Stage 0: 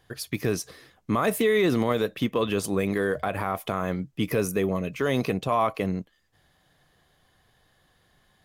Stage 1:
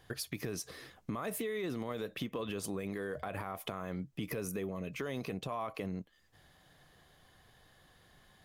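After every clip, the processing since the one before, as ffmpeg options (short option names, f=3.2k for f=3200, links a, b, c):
-af "alimiter=limit=-20dB:level=0:latency=1:release=61,acompressor=threshold=-39dB:ratio=3,volume=1dB"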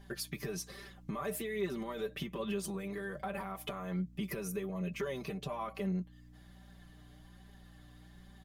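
-af "aecho=1:1:5.1:0.87,aeval=exprs='val(0)+0.00316*(sin(2*PI*60*n/s)+sin(2*PI*2*60*n/s)/2+sin(2*PI*3*60*n/s)/3+sin(2*PI*4*60*n/s)/4+sin(2*PI*5*60*n/s)/5)':c=same,flanger=delay=4.9:depth=2.1:regen=42:speed=1.2:shape=triangular,volume=1dB"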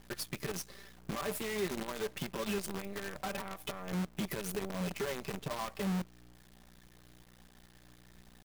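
-af "acrusher=bits=7:dc=4:mix=0:aa=0.000001"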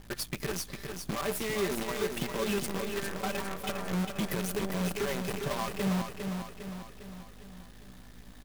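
-af "aeval=exprs='val(0)+0.00141*(sin(2*PI*50*n/s)+sin(2*PI*2*50*n/s)/2+sin(2*PI*3*50*n/s)/3+sin(2*PI*4*50*n/s)/4+sin(2*PI*5*50*n/s)/5)':c=same,aecho=1:1:404|808|1212|1616|2020|2424|2828:0.501|0.266|0.141|0.0746|0.0395|0.021|0.0111,volume=4dB"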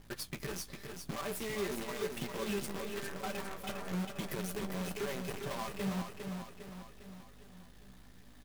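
-af "flanger=delay=7:depth=7.9:regen=-45:speed=0.95:shape=sinusoidal,volume=-2dB"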